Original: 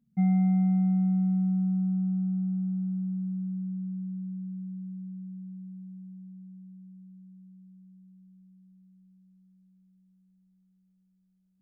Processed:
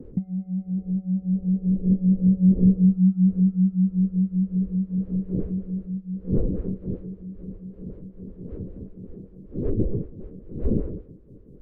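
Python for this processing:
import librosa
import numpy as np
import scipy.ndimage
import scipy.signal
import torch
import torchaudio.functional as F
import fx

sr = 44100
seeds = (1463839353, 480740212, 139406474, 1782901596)

y = fx.dmg_wind(x, sr, seeds[0], corner_hz=140.0, level_db=-41.0)
y = fx.env_lowpass_down(y, sr, base_hz=620.0, full_db=-26.5)
y = fx.over_compress(y, sr, threshold_db=-29.0, ratio=-0.5)
y = fx.low_shelf_res(y, sr, hz=600.0, db=8.5, q=3.0)
y = fx.stagger_phaser(y, sr, hz=5.2)
y = y * 10.0 ** (4.5 / 20.0)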